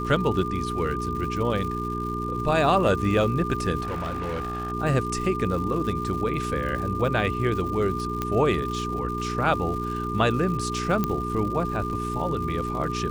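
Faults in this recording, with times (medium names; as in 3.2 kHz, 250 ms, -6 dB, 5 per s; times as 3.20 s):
crackle 210 per s -34 dBFS
hum 60 Hz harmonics 7 -31 dBFS
whine 1.2 kHz -30 dBFS
3.82–4.72 s: clipped -26 dBFS
8.22 s: pop -13 dBFS
11.04 s: pop -11 dBFS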